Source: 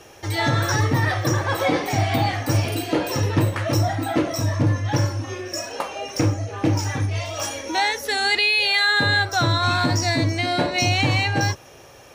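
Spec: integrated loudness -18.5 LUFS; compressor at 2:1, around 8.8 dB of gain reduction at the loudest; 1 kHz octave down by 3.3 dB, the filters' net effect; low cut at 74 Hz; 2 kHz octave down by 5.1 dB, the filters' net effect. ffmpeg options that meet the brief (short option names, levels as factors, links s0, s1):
-af "highpass=74,equalizer=f=1000:t=o:g=-3.5,equalizer=f=2000:t=o:g=-5.5,acompressor=threshold=0.0224:ratio=2,volume=3.98"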